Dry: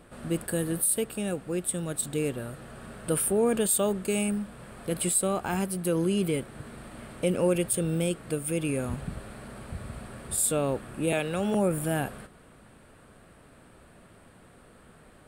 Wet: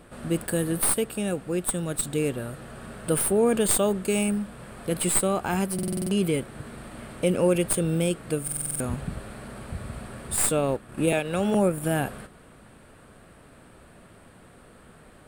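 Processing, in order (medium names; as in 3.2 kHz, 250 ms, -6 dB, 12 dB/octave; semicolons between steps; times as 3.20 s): tracing distortion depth 0.027 ms; 10.57–11.88 s: transient shaper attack +3 dB, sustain -8 dB; buffer glitch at 5.74/8.43 s, samples 2048, times 7; trim +3 dB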